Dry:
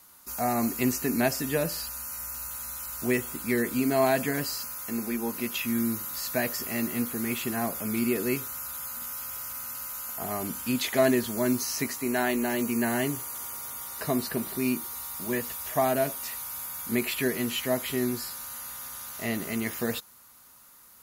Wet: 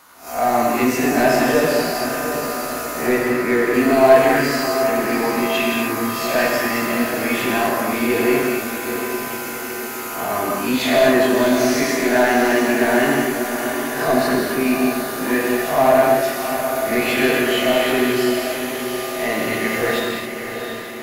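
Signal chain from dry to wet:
peak hold with a rise ahead of every peak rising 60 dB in 0.38 s
0:03.06–0:03.74: low-pass filter 2,100 Hz
mid-hump overdrive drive 19 dB, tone 1,400 Hz, clips at −8.5 dBFS
feedback delay with all-pass diffusion 698 ms, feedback 58%, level −8 dB
reverb whose tail is shaped and stops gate 290 ms flat, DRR −2 dB
level +1.5 dB

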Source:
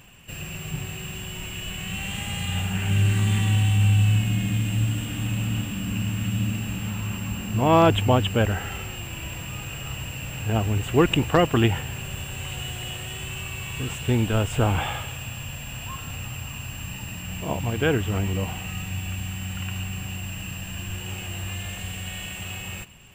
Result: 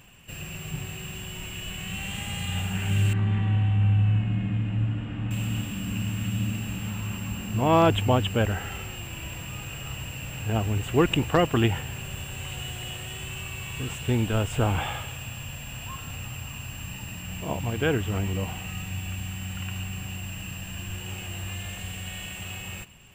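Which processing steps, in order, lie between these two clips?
0:03.13–0:05.31: low-pass filter 1,800 Hz 12 dB per octave
level −2.5 dB

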